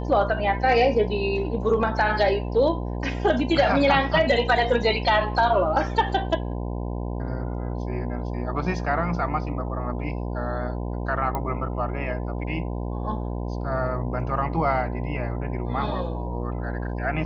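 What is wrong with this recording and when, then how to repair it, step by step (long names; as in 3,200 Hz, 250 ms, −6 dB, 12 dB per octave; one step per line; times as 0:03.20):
mains buzz 60 Hz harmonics 17 −29 dBFS
0:11.35: click −15 dBFS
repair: click removal
hum removal 60 Hz, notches 17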